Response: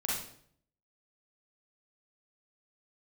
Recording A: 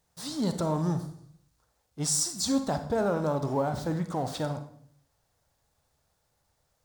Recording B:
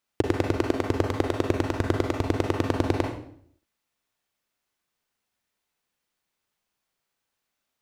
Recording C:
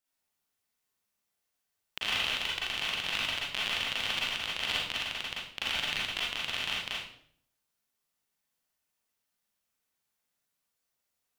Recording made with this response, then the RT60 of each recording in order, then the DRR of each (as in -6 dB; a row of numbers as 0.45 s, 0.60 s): C; 0.60 s, 0.60 s, 0.60 s; 7.5 dB, 1.5 dB, -6.0 dB